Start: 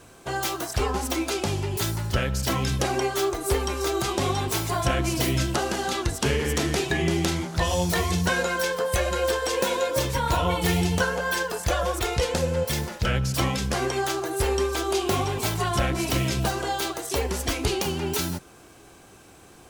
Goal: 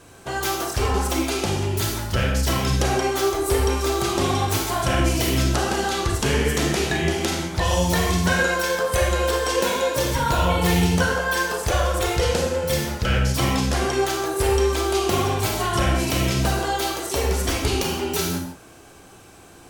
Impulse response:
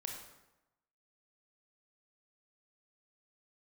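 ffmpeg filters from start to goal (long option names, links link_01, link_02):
-filter_complex "[1:a]atrim=start_sample=2205,afade=type=out:start_time=0.2:duration=0.01,atrim=end_sample=9261,asetrate=35721,aresample=44100[link_01];[0:a][link_01]afir=irnorm=-1:irlink=0,volume=4dB"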